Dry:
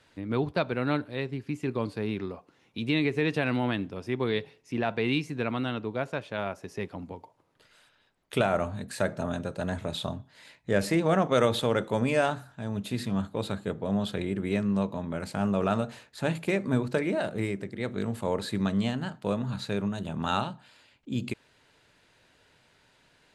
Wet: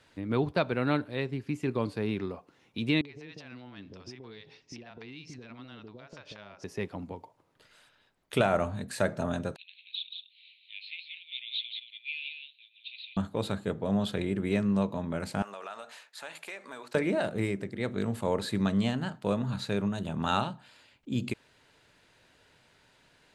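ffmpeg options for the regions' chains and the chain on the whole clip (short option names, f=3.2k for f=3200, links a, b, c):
-filter_complex "[0:a]asettb=1/sr,asplit=3[a][b][c];[a]atrim=end=3.014[d];[b]atrim=start=3.01:end=6.64,asetpts=PTS-STARTPTS,afade=t=in:d=0.004:c=qsin,afade=t=out:st=3.626:d=0.004:c=qsin,acompressor=threshold=-41dB:ratio=20:attack=3.2:release=140:knee=1:detection=peak,lowpass=f=5.4k:t=q:w=3,acrossover=split=620[e][f];[f]adelay=40[g];[e][g]amix=inputs=2:normalize=0,atrim=end_sample=160083[h];[c]atrim=start=6.636[i];[d][h]acrossfade=d=0.004:c1=hsin:c2=qsin[j];[j][i]acrossfade=d=0.004:c1=qsin:c2=hsin,asettb=1/sr,asplit=3[k][l][m];[k]atrim=end=9.564[n];[l]atrim=start=9.56:end=13.17,asetpts=PTS-STARTPTS,afade=t=in:d=0.004:c=qsin,afade=t=out:st=3.606:d=0.004:c=qsin,asuperpass=centerf=3100:order=12:qfactor=1.7,aecho=1:1:178:0.501,atrim=end_sample=159201[o];[m]atrim=start=13.166[p];[n][o]acrossfade=d=0.004:c1=hsin:c2=qsin[q];[q][p]acrossfade=d=0.004:c1=qsin:c2=hsin,asettb=1/sr,asplit=3[r][s][t];[r]atrim=end=15.424[u];[s]atrim=start=15.42:end=16.95,asetpts=PTS-STARTPTS,afade=t=in:d=0.004:c=qsin,afade=t=out:st=1.526:d=0.004:c=qsin,highpass=850,acompressor=threshold=-39dB:ratio=3:attack=3.2:release=140:knee=1:detection=peak[v];[t]atrim=start=16.946[w];[u][v]acrossfade=d=0.004:c1=hsin:c2=qsin[x];[x][w]acrossfade=d=0.004:c1=qsin:c2=hsin"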